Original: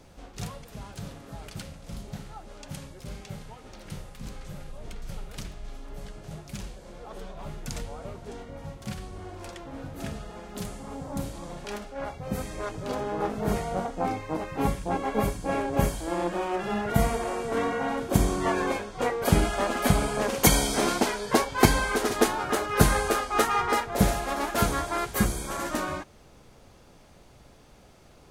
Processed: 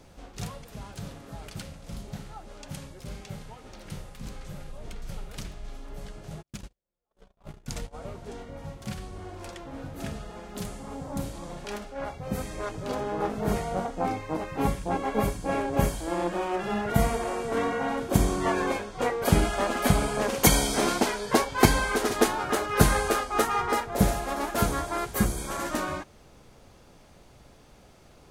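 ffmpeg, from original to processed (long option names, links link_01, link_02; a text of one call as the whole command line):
ffmpeg -i in.wav -filter_complex "[0:a]asplit=3[link_01][link_02][link_03];[link_01]afade=type=out:start_time=6.41:duration=0.02[link_04];[link_02]agate=range=-47dB:threshold=-36dB:ratio=16:release=100:detection=peak,afade=type=in:start_time=6.41:duration=0.02,afade=type=out:start_time=7.93:duration=0.02[link_05];[link_03]afade=type=in:start_time=7.93:duration=0.02[link_06];[link_04][link_05][link_06]amix=inputs=3:normalize=0,asettb=1/sr,asplit=3[link_07][link_08][link_09];[link_07]atrim=end=23.234[link_10];[link_08]atrim=start=23.23:end=25.38,asetpts=PTS-STARTPTS,afade=type=in:duration=0.004:curve=qsin,afade=type=out:start_time=2.146:duration=0.004:curve=qsin,equalizer=frequency=2800:width=0.45:gain=-3[link_11];[link_09]atrim=start=25.376[link_12];[link_10][link_11]acrossfade=duration=0.004:curve1=hsin:curve2=qsin[link_13];[link_13][link_12]acrossfade=duration=0.004:curve1=qsin:curve2=hsin" out.wav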